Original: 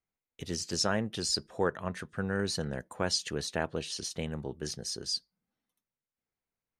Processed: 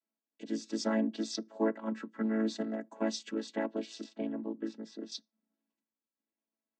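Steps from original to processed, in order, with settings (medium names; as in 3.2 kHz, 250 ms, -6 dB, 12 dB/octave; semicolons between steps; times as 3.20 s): vocoder on a held chord major triad, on A3; 4.04–5.12 s: tone controls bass +1 dB, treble -14 dB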